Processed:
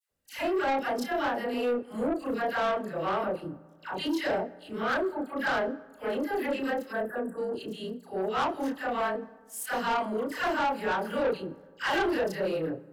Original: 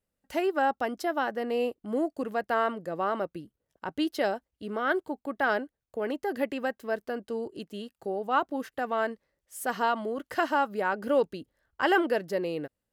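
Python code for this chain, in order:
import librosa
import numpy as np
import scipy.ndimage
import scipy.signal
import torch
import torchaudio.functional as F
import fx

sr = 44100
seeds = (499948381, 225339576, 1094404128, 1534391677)

y = fx.frame_reverse(x, sr, frame_ms=74.0)
y = fx.dispersion(y, sr, late='lows', ms=103.0, hz=1100.0)
y = fx.spec_erase(y, sr, start_s=6.92, length_s=0.46, low_hz=2000.0, high_hz=7500.0)
y = 10.0 ** (-29.0 / 20.0) * np.tanh(y / 10.0 ** (-29.0 / 20.0))
y = fx.rev_fdn(y, sr, rt60_s=1.6, lf_ratio=1.0, hf_ratio=0.5, size_ms=34.0, drr_db=16.0)
y = y * librosa.db_to_amplitude(6.0)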